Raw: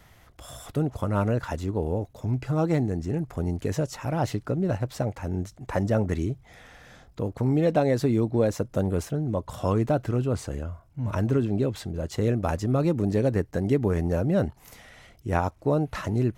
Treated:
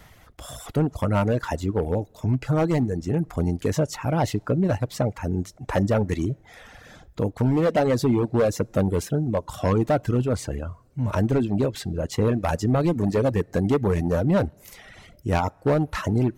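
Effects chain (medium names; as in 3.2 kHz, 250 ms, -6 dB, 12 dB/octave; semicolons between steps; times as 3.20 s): two-slope reverb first 0.25 s, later 2.5 s, from -16 dB, DRR 15 dB; hard clipper -19.5 dBFS, distortion -14 dB; reverb removal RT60 0.78 s; trim +5 dB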